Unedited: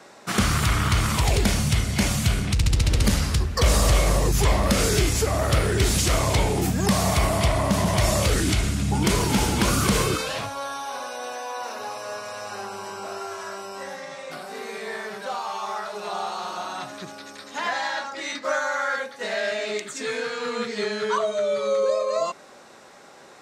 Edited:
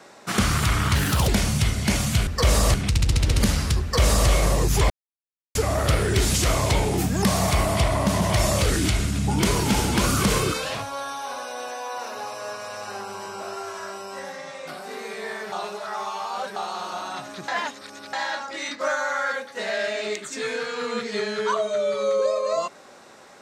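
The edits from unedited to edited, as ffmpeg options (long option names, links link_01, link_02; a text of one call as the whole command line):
ffmpeg -i in.wav -filter_complex "[0:a]asplit=11[link_01][link_02][link_03][link_04][link_05][link_06][link_07][link_08][link_09][link_10][link_11];[link_01]atrim=end=0.954[link_12];[link_02]atrim=start=0.95:end=1.39,asetpts=PTS-STARTPTS,asetrate=58653,aresample=44100,atrim=end_sample=14589,asetpts=PTS-STARTPTS[link_13];[link_03]atrim=start=1.386:end=2.382[link_14];[link_04]atrim=start=3.458:end=3.932[link_15];[link_05]atrim=start=2.378:end=4.54,asetpts=PTS-STARTPTS,afade=type=out:start_time=2.158:duration=0.004:curve=hsin[link_16];[link_06]atrim=start=4.54:end=5.19,asetpts=PTS-STARTPTS,volume=0[link_17];[link_07]atrim=start=5.19:end=15.162,asetpts=PTS-STARTPTS,afade=type=in:duration=0.004:curve=hsin[link_18];[link_08]atrim=start=15.158:end=16.202,asetpts=PTS-STARTPTS,areverse[link_19];[link_09]atrim=start=16.198:end=17.122[link_20];[link_10]atrim=start=17.118:end=17.772,asetpts=PTS-STARTPTS,areverse[link_21];[link_11]atrim=start=17.768[link_22];[link_12][link_13]acrossfade=duration=0.004:curve1=hsin:curve2=hsin[link_23];[link_23][link_14]acrossfade=duration=0.004:curve1=hsin:curve2=hsin[link_24];[link_24][link_15]acrossfade=duration=0.004:curve1=hsin:curve2=hsin[link_25];[link_16][link_17][link_18]concat=n=3:v=0:a=1[link_26];[link_25][link_26]acrossfade=duration=0.004:curve1=hsin:curve2=hsin[link_27];[link_27][link_19]acrossfade=duration=0.004:curve1=hsin:curve2=hsin[link_28];[link_28][link_20]acrossfade=duration=0.004:curve1=hsin:curve2=hsin[link_29];[link_29][link_21]acrossfade=duration=0.004:curve1=hsin:curve2=hsin[link_30];[link_30][link_22]acrossfade=duration=0.004:curve1=hsin:curve2=hsin" out.wav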